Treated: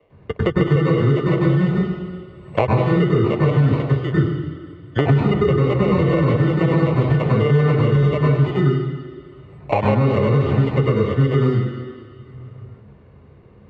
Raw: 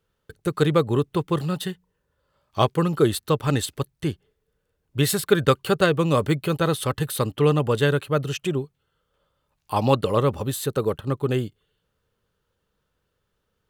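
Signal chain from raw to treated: gate -40 dBFS, range -8 dB; low shelf 130 Hz +7 dB; sample-and-hold 27×; tape spacing loss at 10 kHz 35 dB; reverb RT60 0.90 s, pre-delay 97 ms, DRR -4.5 dB; maximiser -3.5 dB; three-band squash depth 100%; gain -6.5 dB

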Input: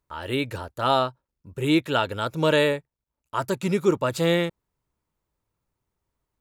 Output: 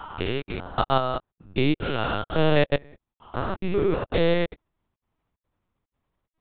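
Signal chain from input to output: stepped spectrum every 0.2 s; step gate "xxxxx.xxxx." 182 bpm -60 dB; LPC vocoder at 8 kHz pitch kept; gain +4 dB

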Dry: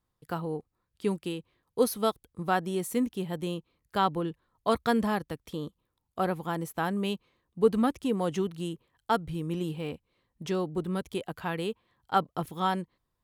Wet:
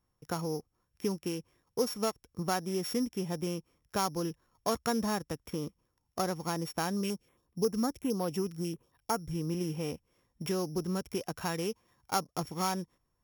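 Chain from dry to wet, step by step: sample sorter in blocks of 8 samples; dynamic EQ 7100 Hz, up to +4 dB, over -48 dBFS, Q 0.71; compressor 2:1, threshold -34 dBFS, peak gain reduction 10 dB; bell 4200 Hz -8.5 dB 0.46 oct; 7.01–9.31 stepped notch 11 Hz 800–6800 Hz; gain +2 dB

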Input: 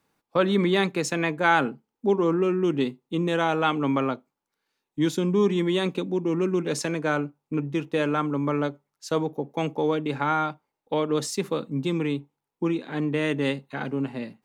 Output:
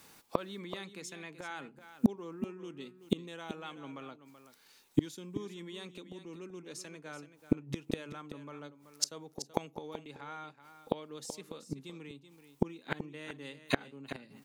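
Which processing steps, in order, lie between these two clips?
high shelf 2500 Hz +11.5 dB; in parallel at -0.5 dB: limiter -13.5 dBFS, peak gain reduction 10 dB; on the sum: flipped gate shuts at -17 dBFS, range -32 dB; echo 0.38 s -12 dB; gain +4 dB

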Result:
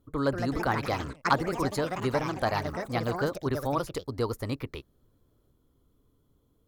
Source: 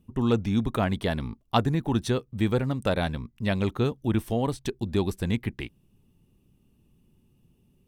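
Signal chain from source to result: fifteen-band EQ 160 Hz -12 dB, 1000 Hz +6 dB, 2500 Hz -7 dB; varispeed +18%; echoes that change speed 0.216 s, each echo +4 st, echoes 3, each echo -6 dB; gain -2 dB

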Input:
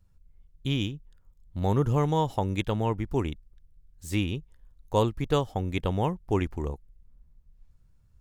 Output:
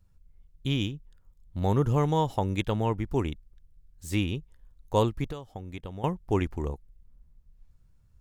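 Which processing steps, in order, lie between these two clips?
5.24–6.04 compressor 10:1, threshold -35 dBFS, peak gain reduction 16 dB

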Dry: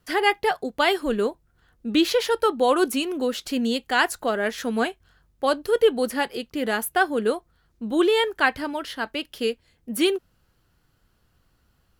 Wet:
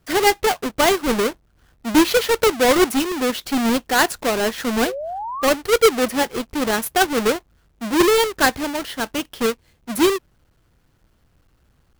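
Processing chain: half-waves squared off; painted sound rise, 4.86–5.48, 470–1300 Hz -28 dBFS

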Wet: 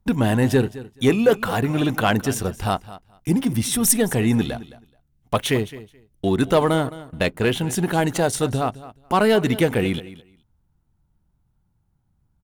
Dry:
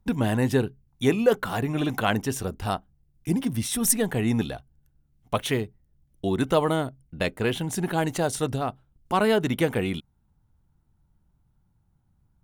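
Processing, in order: sample leveller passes 1; feedback echo 0.214 s, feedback 16%, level -17 dB; gain +1.5 dB

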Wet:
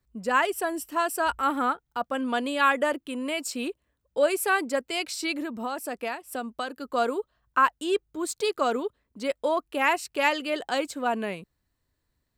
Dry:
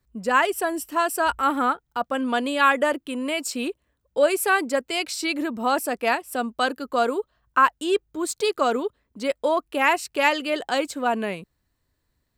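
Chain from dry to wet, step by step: 5.35–6.89 compressor 5:1, threshold -25 dBFS, peak gain reduction 8 dB; gain -3.5 dB

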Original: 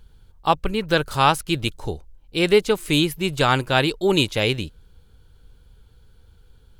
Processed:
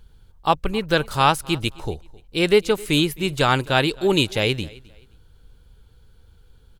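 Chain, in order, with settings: feedback echo 0.263 s, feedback 27%, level -23 dB

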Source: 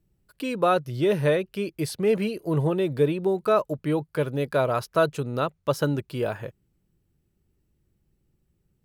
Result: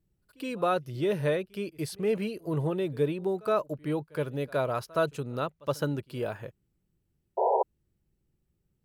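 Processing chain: pre-echo 69 ms -24 dB; painted sound noise, 7.37–7.63, 380–990 Hz -19 dBFS; gain -5.5 dB

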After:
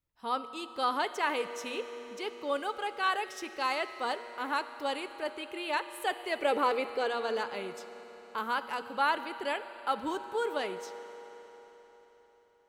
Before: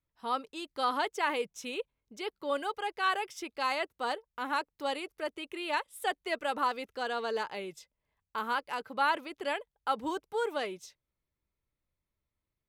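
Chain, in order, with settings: 6.38–7.07 small resonant body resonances 420/2300 Hz, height 18 dB -> 14 dB, ringing for 30 ms; reverb RT60 4.3 s, pre-delay 8 ms, DRR 10.5 dB

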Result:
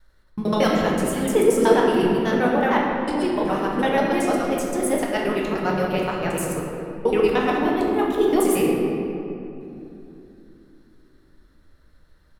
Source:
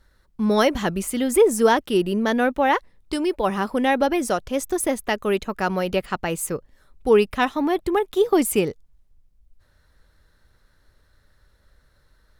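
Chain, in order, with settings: local time reversal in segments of 75 ms; shoebox room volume 120 m³, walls hard, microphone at 0.54 m; harmoniser -4 st -10 dB; gain -4.5 dB

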